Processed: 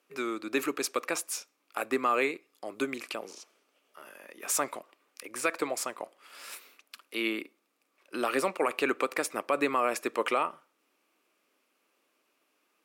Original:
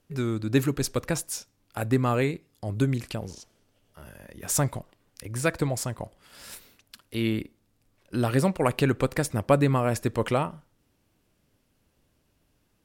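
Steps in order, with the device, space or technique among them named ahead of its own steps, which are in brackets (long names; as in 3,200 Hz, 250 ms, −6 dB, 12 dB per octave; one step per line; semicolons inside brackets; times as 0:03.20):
laptop speaker (high-pass filter 310 Hz 24 dB per octave; parametric band 1,200 Hz +9 dB 0.36 octaves; parametric band 2,400 Hz +8 dB 0.46 octaves; brickwall limiter −13.5 dBFS, peak gain reduction 9 dB)
level −2 dB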